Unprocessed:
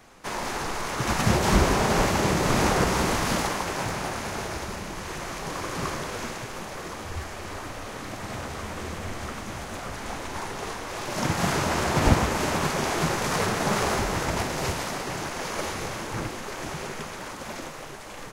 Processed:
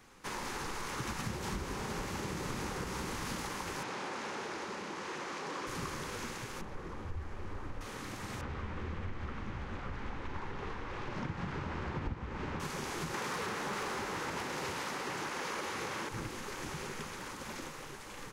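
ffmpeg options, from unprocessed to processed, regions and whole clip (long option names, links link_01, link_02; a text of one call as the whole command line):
ffmpeg -i in.wav -filter_complex "[0:a]asettb=1/sr,asplit=3[link_01][link_02][link_03];[link_01]atrim=end=3.834[link_04];[link_02]atrim=start=3.83:end=5.67,asetpts=PTS-STARTPTS,afade=type=in:duration=0.004:curve=qsin,afade=type=out:start_time=1.836:duration=0.004:curve=qsin,equalizer=frequency=560:width_type=o:width=3:gain=4.5,asoftclip=type=hard:threshold=-26.5dB,highpass=230,lowpass=6400[link_05];[link_03]atrim=start=5.666[link_06];[link_04][link_05]acrossfade=duration=0.004:curve1=hsin:curve2=qsin[link_07];[link_07][link_06]acrossfade=duration=0.004:curve1=qsin:curve2=hsin,asettb=1/sr,asplit=3[link_08][link_09][link_10];[link_08]atrim=end=6.614[link_11];[link_09]atrim=start=6.61:end=7.81,asetpts=PTS-STARTPTS,afade=type=in:duration=0.004:curve=qsin,afade=type=out:start_time=1.196:duration=0.004:curve=qsin,lowpass=frequency=1100:poles=1,lowshelf=frequency=62:gain=11.5[link_12];[link_10]atrim=start=7.806[link_13];[link_11][link_12]acrossfade=duration=0.004:curve1=hsin:curve2=qsin[link_14];[link_14][link_13]acrossfade=duration=0.004:curve1=qsin:curve2=hsin,asettb=1/sr,asplit=3[link_15][link_16][link_17];[link_15]atrim=end=8.414[link_18];[link_16]atrim=start=8.41:end=12.6,asetpts=PTS-STARTPTS,afade=type=in:duration=0.004:curve=qsin,afade=type=out:start_time=4.186:duration=0.004:curve=qsin,lowpass=2700,lowshelf=frequency=110:gain=9[link_19];[link_17]atrim=start=12.596[link_20];[link_18][link_19]acrossfade=duration=0.004:curve1=hsin:curve2=qsin[link_21];[link_21][link_20]acrossfade=duration=0.004:curve1=qsin:curve2=hsin,asettb=1/sr,asplit=3[link_22][link_23][link_24];[link_22]atrim=end=13.144[link_25];[link_23]atrim=start=13.14:end=16.09,asetpts=PTS-STARTPTS,afade=type=in:duration=0.004:curve=qsin,afade=type=out:start_time=2.946:duration=0.004:curve=qsin,highpass=frequency=360:poles=1,aeval=exprs='0.224*sin(PI/2*2.24*val(0)/0.224)':channel_layout=same,highshelf=frequency=4300:gain=-8[link_26];[link_24]atrim=start=16.086[link_27];[link_25][link_26]acrossfade=duration=0.004:curve1=hsin:curve2=qsin[link_28];[link_28][link_27]acrossfade=duration=0.004:curve1=qsin:curve2=hsin,acompressor=threshold=-28dB:ratio=10,equalizer=frequency=660:width_type=o:width=0.31:gain=-11,volume=-6dB" out.wav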